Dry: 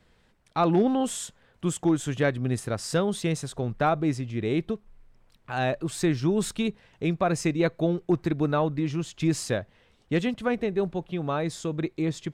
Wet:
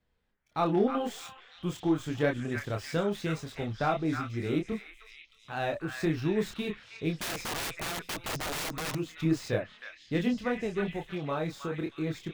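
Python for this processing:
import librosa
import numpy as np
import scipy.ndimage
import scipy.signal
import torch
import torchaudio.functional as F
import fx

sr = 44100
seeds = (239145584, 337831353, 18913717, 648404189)

y = scipy.signal.medfilt(x, 5)
y = fx.echo_stepped(y, sr, ms=316, hz=1700.0, octaves=0.7, feedback_pct=70, wet_db=-2.0)
y = fx.chorus_voices(y, sr, voices=6, hz=0.88, base_ms=27, depth_ms=2.4, mix_pct=40)
y = fx.overflow_wrap(y, sr, gain_db=28.0, at=(7.18, 8.95))
y = fx.noise_reduce_blind(y, sr, reduce_db=11)
y = F.gain(torch.from_numpy(y), -1.5).numpy()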